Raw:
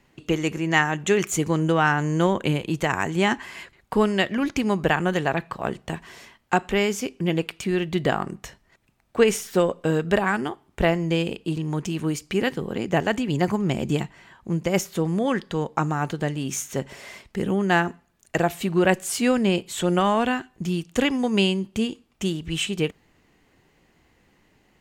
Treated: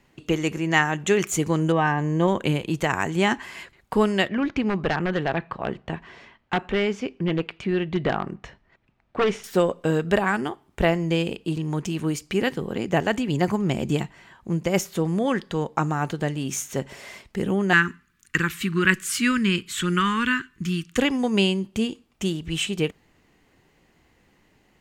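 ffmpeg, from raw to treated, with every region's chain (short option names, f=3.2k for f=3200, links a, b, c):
-filter_complex "[0:a]asettb=1/sr,asplit=3[a][b][c];[a]atrim=end=1.724[d];[b]atrim=start=1.72:end=2.28,asetpts=PTS-STARTPTS,afade=t=in:d=0.004:c=qsin,afade=t=out:st=0.556:d=0.004:c=qsin,asuperstop=centerf=1400:order=12:qfactor=6.5,highshelf=f=3.4k:g=-12[e];[c]atrim=start=2.276[f];[d][e]acrossfade=d=0.004:c1=hsin:c2=qsin[g];[g][f]acrossfade=d=0.004:c1=qsin:c2=hsin,asettb=1/sr,asplit=3[h][i][j];[h]atrim=end=4.284[k];[i]atrim=start=4.28:end=9.44,asetpts=PTS-STARTPTS,afade=t=in:d=0.004:c=qsin,afade=t=out:st=5.156:d=0.004:c=qsin,aeval=exprs='0.188*(abs(mod(val(0)/0.188+3,4)-2)-1)':c=same,lowpass=3.1k[l];[j]atrim=start=9.436[m];[k][l]acrossfade=d=0.004:c1=hsin:c2=qsin[n];[n][m]acrossfade=d=0.004:c1=qsin:c2=hsin,asettb=1/sr,asplit=3[o][p][q];[o]atrim=end=17.734[r];[p]atrim=start=17.73:end=20.98,asetpts=PTS-STARTPTS,afade=t=in:d=0.004:c=qsin,afade=t=out:st=3.246:d=0.004:c=qsin,asuperstop=centerf=680:order=4:qfactor=0.53,equalizer=f=1.2k:t=o:w=1.7:g=12[s];[q]atrim=start=20.976[t];[r][s]acrossfade=d=0.004:c1=hsin:c2=qsin[u];[u][t]acrossfade=d=0.004:c1=qsin:c2=hsin"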